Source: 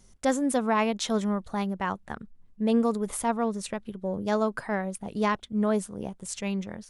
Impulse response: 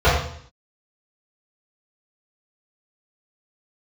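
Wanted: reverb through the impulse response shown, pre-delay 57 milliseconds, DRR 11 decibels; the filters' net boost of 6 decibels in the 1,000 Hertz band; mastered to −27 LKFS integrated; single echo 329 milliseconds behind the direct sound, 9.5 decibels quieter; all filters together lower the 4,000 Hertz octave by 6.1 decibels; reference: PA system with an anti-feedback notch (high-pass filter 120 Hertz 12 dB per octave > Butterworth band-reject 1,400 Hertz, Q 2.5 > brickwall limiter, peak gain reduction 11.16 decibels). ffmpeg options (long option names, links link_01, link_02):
-filter_complex "[0:a]equalizer=frequency=1000:width_type=o:gain=8,equalizer=frequency=4000:width_type=o:gain=-8.5,aecho=1:1:329:0.335,asplit=2[link_01][link_02];[1:a]atrim=start_sample=2205,adelay=57[link_03];[link_02][link_03]afir=irnorm=-1:irlink=0,volume=-35.5dB[link_04];[link_01][link_04]amix=inputs=2:normalize=0,highpass=120,asuperstop=centerf=1400:order=8:qfactor=2.5,volume=3dB,alimiter=limit=-17.5dB:level=0:latency=1"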